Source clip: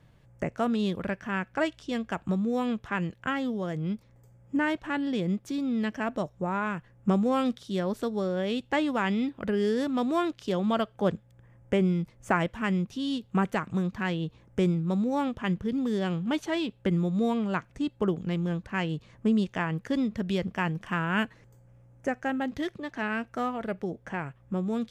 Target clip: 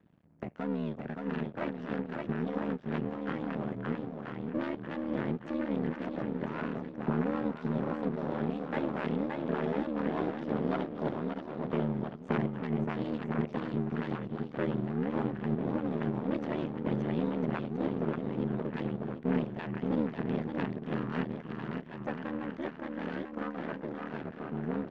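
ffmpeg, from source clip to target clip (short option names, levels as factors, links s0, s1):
-af "lowshelf=f=300:g=9,aecho=1:1:570|997.5|1318|1559|1739:0.631|0.398|0.251|0.158|0.1,aeval=exprs='max(val(0),0)':c=same,aeval=exprs='val(0)*sin(2*PI*38*n/s)':c=same,highpass=150,lowpass=2700,volume=0.794"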